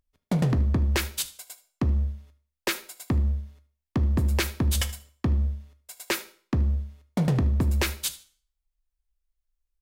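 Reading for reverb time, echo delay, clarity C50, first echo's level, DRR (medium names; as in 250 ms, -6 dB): 0.45 s, 76 ms, 14.5 dB, -19.0 dB, 10.5 dB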